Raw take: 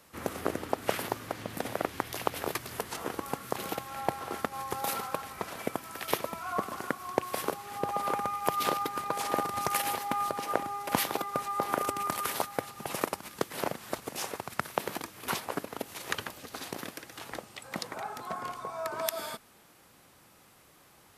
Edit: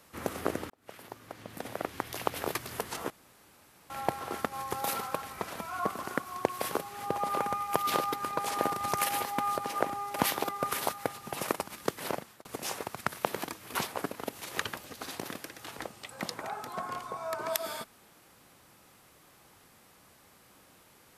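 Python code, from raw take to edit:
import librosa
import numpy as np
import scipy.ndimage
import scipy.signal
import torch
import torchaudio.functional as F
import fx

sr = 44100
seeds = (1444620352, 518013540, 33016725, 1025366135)

y = fx.edit(x, sr, fx.fade_in_span(start_s=0.7, length_s=1.71),
    fx.room_tone_fill(start_s=3.1, length_s=0.8),
    fx.cut(start_s=5.6, length_s=0.73),
    fx.cut(start_s=11.44, length_s=0.8),
    fx.fade_out_span(start_s=13.58, length_s=0.4), tone=tone)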